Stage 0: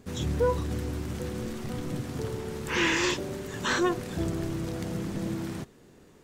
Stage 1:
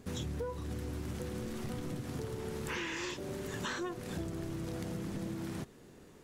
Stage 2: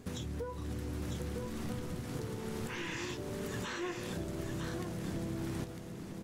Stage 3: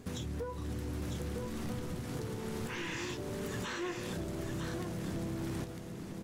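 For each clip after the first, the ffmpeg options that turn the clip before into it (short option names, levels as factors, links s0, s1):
-af "equalizer=f=11000:w=7.2:g=5.5,acompressor=threshold=0.02:ratio=12,volume=0.891"
-filter_complex "[0:a]asplit=2[s0][s1];[s1]adelay=17,volume=0.211[s2];[s0][s2]amix=inputs=2:normalize=0,alimiter=level_in=2.24:limit=0.0631:level=0:latency=1:release=481,volume=0.447,aecho=1:1:953:0.531,volume=1.19"
-af "asoftclip=type=hard:threshold=0.0224,volume=1.12"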